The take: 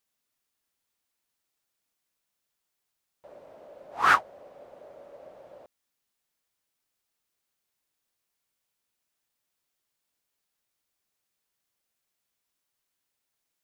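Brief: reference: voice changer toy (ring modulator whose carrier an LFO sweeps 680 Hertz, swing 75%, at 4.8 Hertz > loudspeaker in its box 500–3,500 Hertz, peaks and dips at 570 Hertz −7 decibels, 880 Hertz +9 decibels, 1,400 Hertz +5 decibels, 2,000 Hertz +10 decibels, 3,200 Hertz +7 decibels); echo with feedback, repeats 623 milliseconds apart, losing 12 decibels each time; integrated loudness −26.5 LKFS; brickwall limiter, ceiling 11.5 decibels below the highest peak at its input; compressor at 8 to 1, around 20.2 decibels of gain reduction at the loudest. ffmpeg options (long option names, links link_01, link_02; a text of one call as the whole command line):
ffmpeg -i in.wav -af "acompressor=threshold=-37dB:ratio=8,alimiter=level_in=14dB:limit=-24dB:level=0:latency=1,volume=-14dB,aecho=1:1:623|1246|1869:0.251|0.0628|0.0157,aeval=exprs='val(0)*sin(2*PI*680*n/s+680*0.75/4.8*sin(2*PI*4.8*n/s))':channel_layout=same,highpass=500,equalizer=frequency=570:width_type=q:width=4:gain=-7,equalizer=frequency=880:width_type=q:width=4:gain=9,equalizer=frequency=1400:width_type=q:width=4:gain=5,equalizer=frequency=2000:width_type=q:width=4:gain=10,equalizer=frequency=3200:width_type=q:width=4:gain=7,lowpass=frequency=3500:width=0.5412,lowpass=frequency=3500:width=1.3066,volume=22dB" out.wav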